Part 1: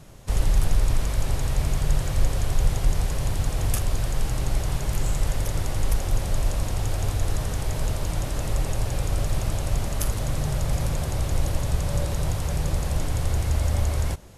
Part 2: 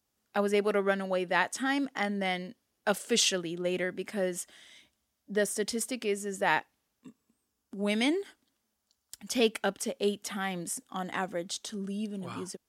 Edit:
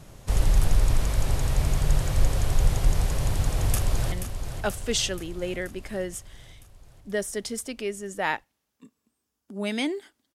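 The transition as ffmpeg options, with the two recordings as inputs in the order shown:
-filter_complex "[0:a]apad=whole_dur=10.34,atrim=end=10.34,atrim=end=4.122[s0];[1:a]atrim=start=2.348:end=8.57[s1];[s0][s1]acrossfade=d=0.004:c1=hsin:c2=hsin,asplit=2[s2][s3];[s3]afade=t=in:st=3.47:d=0.01,afade=t=out:st=4.12:d=0.01,aecho=0:1:480|960|1440|1920|2400|2880|3360|3840|4320:0.375837|0.244294|0.158791|0.103214|0.0670893|0.0436081|0.0283452|0.0184244|0.0119759[s4];[s2][s4]amix=inputs=2:normalize=0"

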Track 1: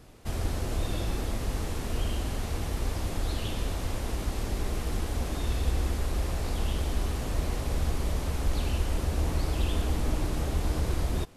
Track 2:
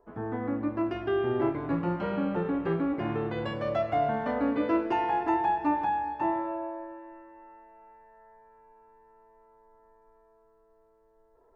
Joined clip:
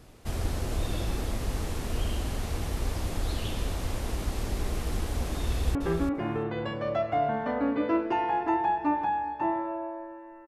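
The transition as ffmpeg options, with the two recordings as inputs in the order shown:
-filter_complex "[0:a]apad=whole_dur=10.47,atrim=end=10.47,atrim=end=5.752[s0];[1:a]atrim=start=2.548:end=7.27[s1];[s0][s1]acrossfade=d=0.004:c1=hsin:c2=hsin,asplit=2[s2][s3];[s3]afade=t=in:st=5.46:d=0.01,afade=t=out:st=5.75:d=0.01,aecho=0:1:340|680:0.446684|0.0446684[s4];[s2][s4]amix=inputs=2:normalize=0"

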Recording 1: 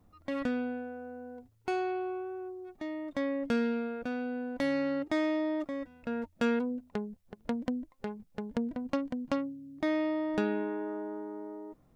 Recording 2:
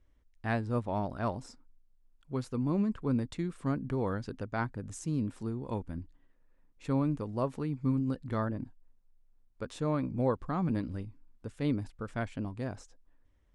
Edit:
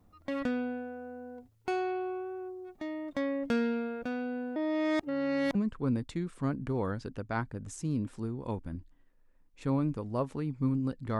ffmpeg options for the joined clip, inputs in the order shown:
-filter_complex "[0:a]apad=whole_dur=11.19,atrim=end=11.19,asplit=2[s0][s1];[s0]atrim=end=4.562[s2];[s1]atrim=start=4.558:end=5.552,asetpts=PTS-STARTPTS,areverse[s3];[1:a]atrim=start=2.778:end=8.42[s4];[s2][s3]acrossfade=d=0.004:c1=hsin:c2=hsin[s5];[s5][s4]acrossfade=d=0.004:c1=hsin:c2=hsin"

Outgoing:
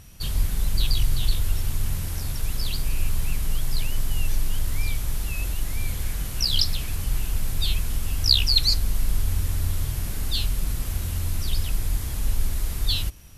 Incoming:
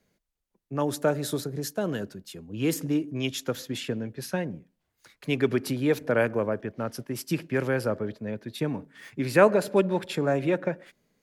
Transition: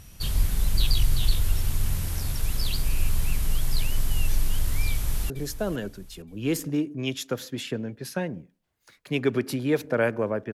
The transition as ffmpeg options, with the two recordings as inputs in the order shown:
-filter_complex "[0:a]apad=whole_dur=10.53,atrim=end=10.53,atrim=end=5.302[s0];[1:a]atrim=start=1.468:end=6.7[s1];[s0][s1]acrossfade=d=0.004:c1=hsin:c2=hsin,asplit=2[s2][s3];[s3]afade=t=in:st=4.89:d=0.01,afade=t=out:st=5.3:d=0.01,aecho=0:1:460|920|1380:0.223872|0.0783552|0.0274243[s4];[s2][s4]amix=inputs=2:normalize=0"

